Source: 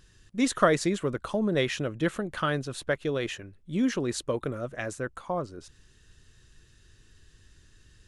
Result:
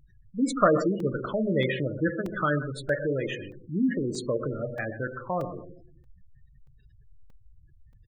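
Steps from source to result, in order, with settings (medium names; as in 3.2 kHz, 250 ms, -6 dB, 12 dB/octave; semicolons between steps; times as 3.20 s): 4.64–5.04 s: distance through air 130 m; feedback delay 129 ms, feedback 18%, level -11.5 dB; simulated room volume 310 m³, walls mixed, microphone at 0.49 m; spectral gate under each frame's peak -15 dB strong; dynamic bell 1.7 kHz, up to +4 dB, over -46 dBFS, Q 1.9; crackling interface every 0.63 s, samples 128, zero, from 1.00 s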